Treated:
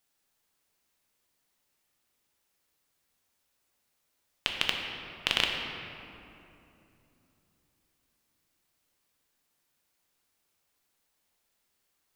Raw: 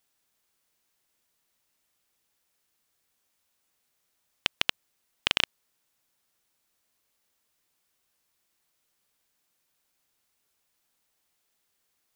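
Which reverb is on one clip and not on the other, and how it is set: shoebox room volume 130 m³, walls hard, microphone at 0.37 m; gain -2.5 dB

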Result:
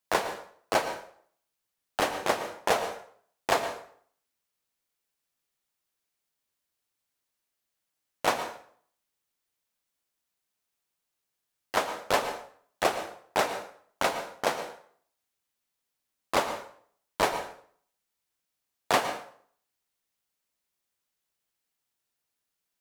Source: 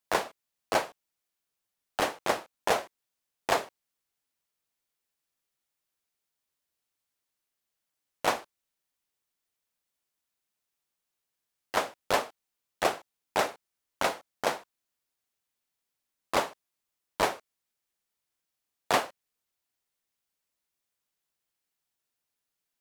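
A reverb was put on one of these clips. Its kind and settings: plate-style reverb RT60 0.55 s, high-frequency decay 0.8×, pre-delay 0.1 s, DRR 9 dB; gain +1 dB

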